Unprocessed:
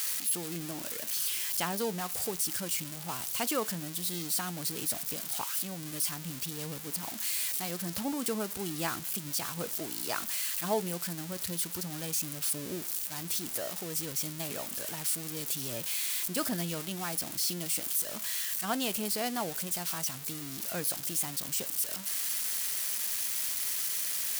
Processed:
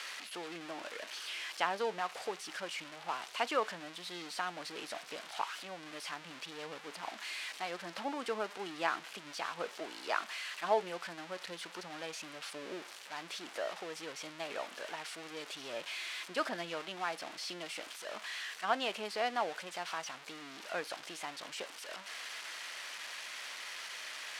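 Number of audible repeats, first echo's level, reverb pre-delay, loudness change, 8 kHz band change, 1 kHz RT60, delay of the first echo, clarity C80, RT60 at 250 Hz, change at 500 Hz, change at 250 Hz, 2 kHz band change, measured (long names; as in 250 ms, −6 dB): no echo audible, no echo audible, no reverb audible, −8.0 dB, −17.0 dB, no reverb audible, no echo audible, no reverb audible, no reverb audible, −1.0 dB, −10.0 dB, +2.0 dB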